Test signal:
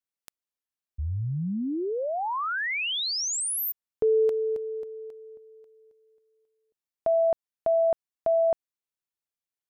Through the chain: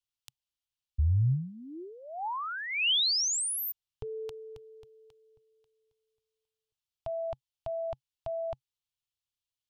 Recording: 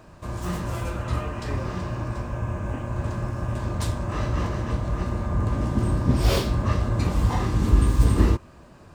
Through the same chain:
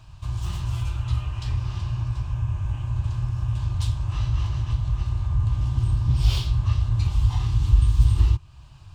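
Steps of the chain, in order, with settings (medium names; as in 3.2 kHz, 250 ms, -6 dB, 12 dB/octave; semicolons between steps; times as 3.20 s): FFT filter 130 Hz 0 dB, 200 Hz -24 dB, 320 Hz -22 dB, 520 Hz -28 dB, 840 Hz -11 dB, 1.9 kHz -16 dB, 3 kHz -1 dB, 12 kHz -12 dB; in parallel at +2 dB: compression, threshold -33 dBFS; on the sum: dynamic bell 360 Hz, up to +4 dB, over -48 dBFS, Q 2.3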